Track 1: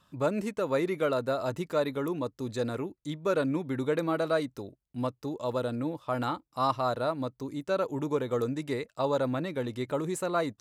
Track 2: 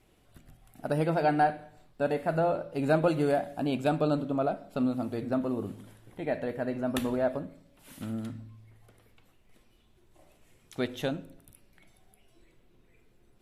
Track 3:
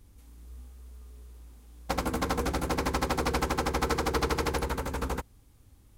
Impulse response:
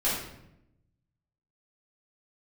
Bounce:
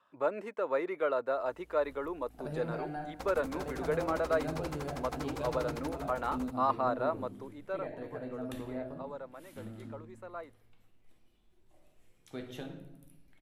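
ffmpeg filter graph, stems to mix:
-filter_complex "[0:a]acrossover=split=360 2500:gain=0.0708 1 0.126[a][b][c];[a][b][c]amix=inputs=3:normalize=0,volume=-1dB,afade=t=out:st=7.37:d=0.58:silence=0.237137[d];[1:a]acrossover=split=180[e][f];[f]acompressor=threshold=-32dB:ratio=3[g];[e][g]amix=inputs=2:normalize=0,adelay=1550,volume=-11.5dB,asplit=2[h][i];[i]volume=-11.5dB[j];[2:a]adelay=1300,volume=-13.5dB[k];[3:a]atrim=start_sample=2205[l];[j][l]afir=irnorm=-1:irlink=0[m];[d][h][k][m]amix=inputs=4:normalize=0"

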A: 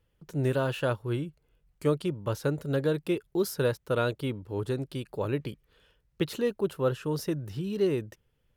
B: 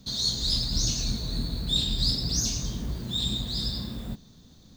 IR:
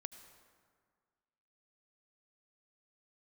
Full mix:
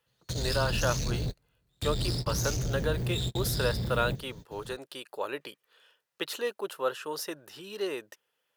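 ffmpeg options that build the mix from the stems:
-filter_complex "[0:a]highpass=690,bandreject=f=2.2k:w=14,acontrast=29,volume=-1.5dB,asplit=2[a][b];[1:a]equalizer=f=125:t=o:w=1:g=10,equalizer=f=250:t=o:w=1:g=-7,equalizer=f=500:t=o:w=1:g=11,equalizer=f=1k:t=o:w=1:g=-11,equalizer=f=2k:t=o:w=1:g=7,equalizer=f=4k:t=o:w=1:g=-8,asoftclip=type=tanh:threshold=-30.5dB,volume=3dB[c];[b]apad=whole_len=210245[d];[c][d]sidechaingate=range=-43dB:threshold=-49dB:ratio=16:detection=peak[e];[a][e]amix=inputs=2:normalize=0"

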